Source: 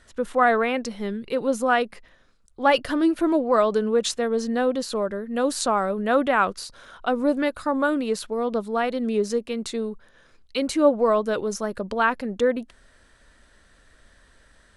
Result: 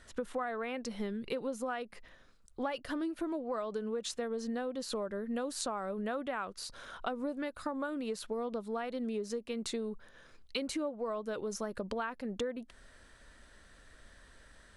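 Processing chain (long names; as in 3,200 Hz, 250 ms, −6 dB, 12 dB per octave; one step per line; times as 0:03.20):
downward compressor 12 to 1, threshold −31 dBFS, peak gain reduction 19.5 dB
level −2 dB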